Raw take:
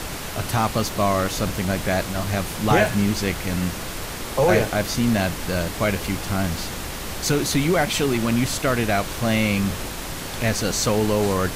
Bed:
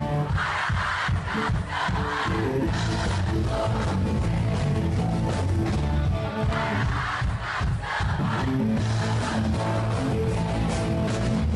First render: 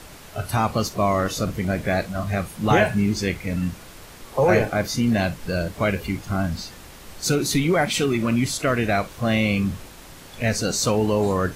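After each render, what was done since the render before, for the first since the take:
noise reduction from a noise print 12 dB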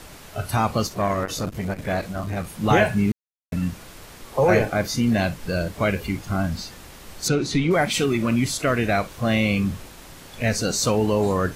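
0:00.86–0:02.47: saturating transformer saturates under 430 Hz
0:03.12–0:03.52: silence
0:07.28–0:07.71: high-frequency loss of the air 100 metres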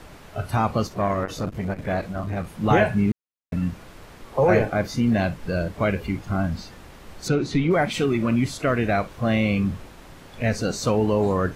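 high-shelf EQ 3,700 Hz −11.5 dB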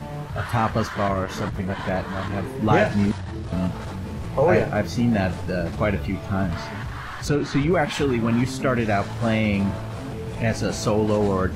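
mix in bed −7 dB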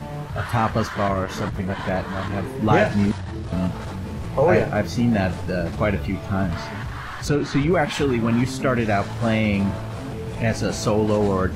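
level +1 dB

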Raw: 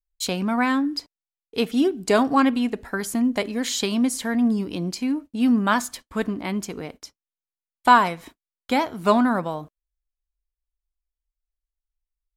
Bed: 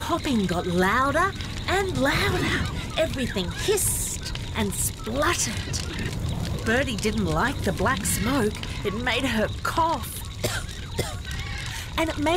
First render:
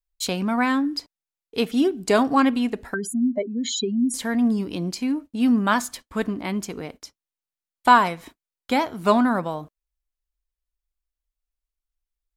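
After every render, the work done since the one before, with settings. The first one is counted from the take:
0:02.94–0:04.14: expanding power law on the bin magnitudes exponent 2.8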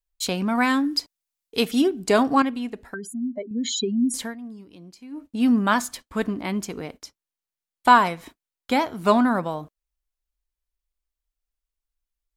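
0:00.55–0:01.82: high-shelf EQ 3,400 Hz +8 dB
0:02.42–0:03.51: clip gain −6.5 dB
0:04.20–0:05.26: duck −17.5 dB, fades 0.15 s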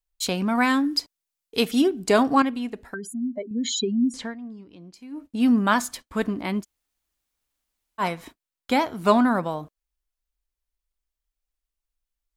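0:03.93–0:04.94: high-frequency loss of the air 110 metres
0:06.62–0:08.01: fill with room tone, crossfade 0.06 s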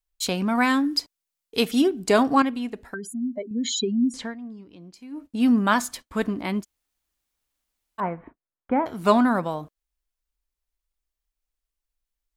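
0:08.00–0:08.86: Bessel low-pass filter 1,200 Hz, order 8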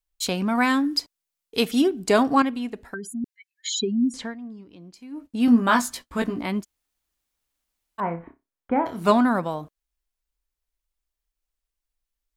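0:03.24–0:03.74: Chebyshev high-pass filter 1,600 Hz, order 6
0:05.46–0:06.46: double-tracking delay 17 ms −4 dB
0:08.01–0:09.11: flutter between parallel walls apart 5.1 metres, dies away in 0.21 s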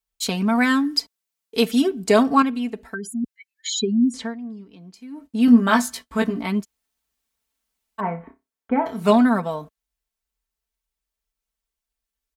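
high-pass filter 46 Hz
comb filter 4.5 ms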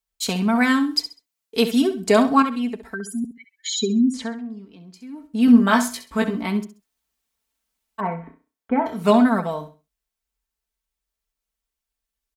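repeating echo 66 ms, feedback 26%, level −11.5 dB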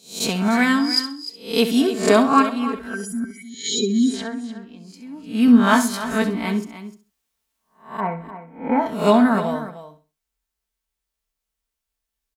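peak hold with a rise ahead of every peak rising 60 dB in 0.40 s
single-tap delay 301 ms −13 dB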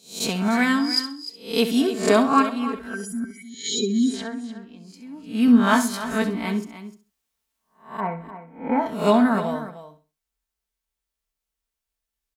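level −2.5 dB

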